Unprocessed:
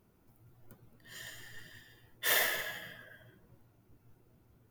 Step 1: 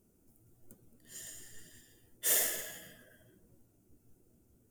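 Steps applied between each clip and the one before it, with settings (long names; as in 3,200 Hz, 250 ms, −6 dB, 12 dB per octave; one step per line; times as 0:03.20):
octave-band graphic EQ 125/250/1,000/2,000/4,000/8,000 Hz −7/+3/−11/−7/−7/+11 dB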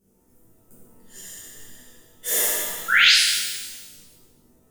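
sound drawn into the spectrogram rise, 0:02.88–0:03.12, 1,300–5,400 Hz −22 dBFS
reverb with rising layers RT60 1.2 s, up +12 semitones, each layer −8 dB, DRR −11 dB
level −3 dB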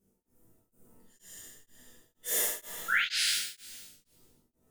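tremolo along a rectified sine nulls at 2.1 Hz
level −7 dB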